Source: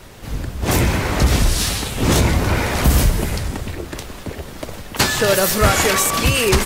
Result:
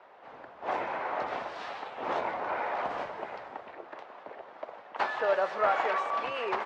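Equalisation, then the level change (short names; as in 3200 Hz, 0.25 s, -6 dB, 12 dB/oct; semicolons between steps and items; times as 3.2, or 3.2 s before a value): ladder band-pass 920 Hz, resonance 35%; air absorption 99 m; +3.0 dB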